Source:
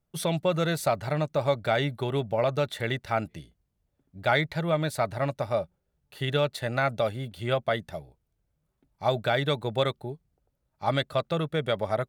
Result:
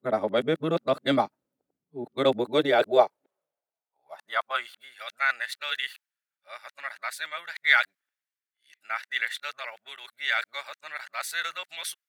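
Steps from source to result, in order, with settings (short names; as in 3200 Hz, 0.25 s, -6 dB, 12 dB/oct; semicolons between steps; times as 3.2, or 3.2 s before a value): whole clip reversed; high-pass sweep 260 Hz -> 1700 Hz, 2.31–4.99; three-band expander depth 40%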